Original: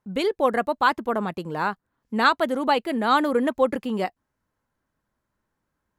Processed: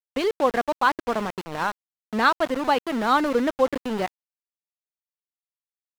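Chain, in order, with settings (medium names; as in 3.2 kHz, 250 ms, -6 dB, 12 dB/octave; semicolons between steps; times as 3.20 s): small samples zeroed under -27 dBFS; treble shelf 6.9 kHz -11 dB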